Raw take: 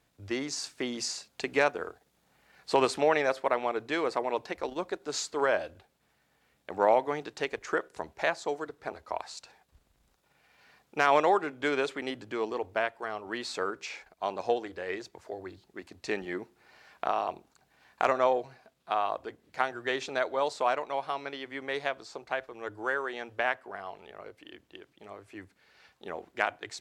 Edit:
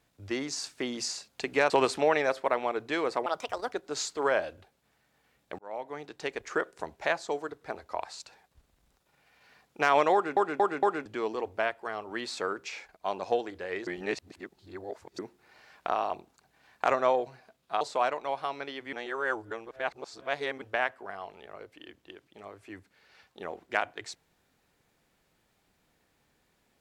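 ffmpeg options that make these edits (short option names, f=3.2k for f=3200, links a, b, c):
-filter_complex "[0:a]asplit=14[a][b][c][d][e][f][g][h][i][j][k][l][m][n];[a]atrim=end=1.702[o];[b]atrim=start=2.698:end=4.264[p];[c]atrim=start=4.26:end=4.9,asetpts=PTS-STARTPTS,asetrate=60417,aresample=44100,atrim=end_sample=20601,asetpts=PTS-STARTPTS[q];[d]atrim=start=4.896:end=6.76,asetpts=PTS-STARTPTS,afade=t=out:st=1.86:d=0.004:c=hsin[r];[e]atrim=start=6.76:end=11.542,asetpts=PTS-STARTPTS,afade=t=in:d=0.88[s];[f]atrim=start=11.308:end=11.542[t];[g]atrim=start=11.308:end=11.542[u];[h]atrim=start=11.308:end=11.542[v];[i]atrim=start=12.228:end=15.042[w];[j]atrim=start=15.038:end=16.362,asetpts=PTS-STARTPTS,areverse[x];[k]atrim=start=16.358:end=18.982[y];[l]atrim=start=20.458:end=21.582[z];[m]atrim=start=21.578:end=23.272,asetpts=PTS-STARTPTS,areverse[aa];[n]atrim=start=23.268[ab];[o][p]acrossfade=d=0.004:c1=hsin:c2=hsin[ac];[ac][q]acrossfade=d=0.004:c1=hsin:c2=hsin[ad];[r][s]concat=n=2:v=0:a=1[ae];[ad][ae]acrossfade=d=0.004:c1=hsin:c2=hsin[af];[af][t]acrossfade=d=0.004:c1=hsin:c2=hsin[ag];[ag][u]acrossfade=d=0.004:c1=hsin:c2=hsin[ah];[ah][v]acrossfade=d=0.004:c1=hsin:c2=hsin[ai];[ai][w]acrossfade=d=0.004:c1=hsin:c2=hsin[aj];[aj][x]acrossfade=d=0.004:c1=hsin:c2=hsin[ak];[ak][y]acrossfade=d=0.004:c1=hsin:c2=hsin[al];[al][z]acrossfade=d=0.004:c1=hsin:c2=hsin[am];[am][aa]acrossfade=d=0.004:c1=hsin:c2=hsin[an];[an][ab]acrossfade=d=0.004:c1=hsin:c2=hsin"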